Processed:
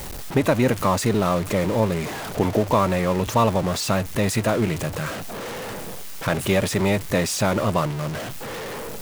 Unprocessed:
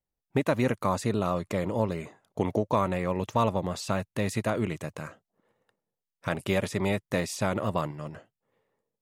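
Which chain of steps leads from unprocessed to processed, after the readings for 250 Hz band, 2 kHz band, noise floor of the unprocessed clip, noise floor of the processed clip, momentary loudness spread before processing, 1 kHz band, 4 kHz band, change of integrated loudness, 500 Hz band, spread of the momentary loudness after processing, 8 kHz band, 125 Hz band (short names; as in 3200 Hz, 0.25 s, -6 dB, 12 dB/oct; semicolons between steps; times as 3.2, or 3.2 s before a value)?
+7.0 dB, +7.5 dB, under -85 dBFS, -33 dBFS, 11 LU, +7.0 dB, +10.5 dB, +6.5 dB, +7.0 dB, 12 LU, +12.0 dB, +7.5 dB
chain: zero-crossing step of -30.5 dBFS; gain +5 dB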